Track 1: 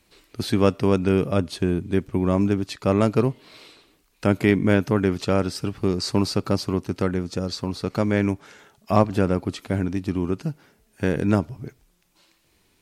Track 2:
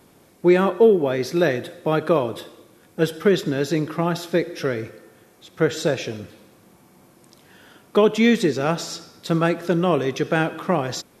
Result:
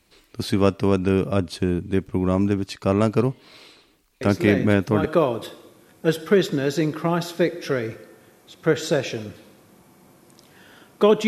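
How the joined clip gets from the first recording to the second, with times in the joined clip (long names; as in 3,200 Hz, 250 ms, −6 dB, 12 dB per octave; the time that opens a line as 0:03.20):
track 1
0:04.21: mix in track 2 from 0:01.15 0.84 s −6 dB
0:05.05: continue with track 2 from 0:01.99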